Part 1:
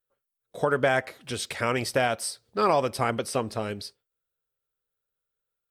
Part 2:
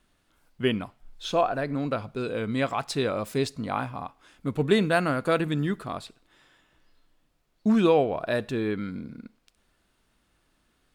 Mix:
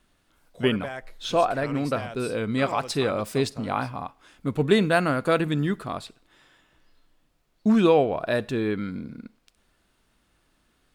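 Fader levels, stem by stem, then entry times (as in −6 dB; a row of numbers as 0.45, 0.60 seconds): −12.0, +2.0 decibels; 0.00, 0.00 seconds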